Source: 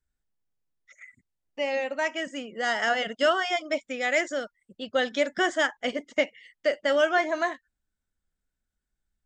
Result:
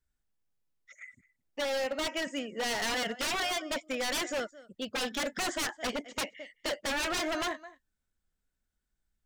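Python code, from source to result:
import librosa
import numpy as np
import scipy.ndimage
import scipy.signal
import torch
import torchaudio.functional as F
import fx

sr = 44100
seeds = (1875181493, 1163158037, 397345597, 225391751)

y = x + 10.0 ** (-22.0 / 20.0) * np.pad(x, (int(215 * sr / 1000.0), 0))[:len(x)]
y = 10.0 ** (-26.5 / 20.0) * (np.abs((y / 10.0 ** (-26.5 / 20.0) + 3.0) % 4.0 - 2.0) - 1.0)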